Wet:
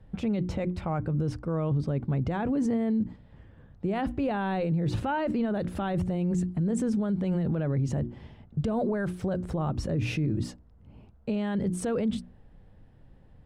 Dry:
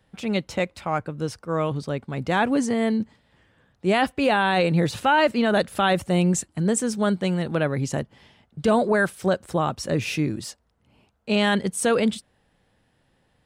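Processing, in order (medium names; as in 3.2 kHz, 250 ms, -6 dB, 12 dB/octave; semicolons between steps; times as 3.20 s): tilt EQ -4 dB/octave; hum notches 60/120/180/240/300/360 Hz; peak limiter -21 dBFS, peak gain reduction 17.5 dB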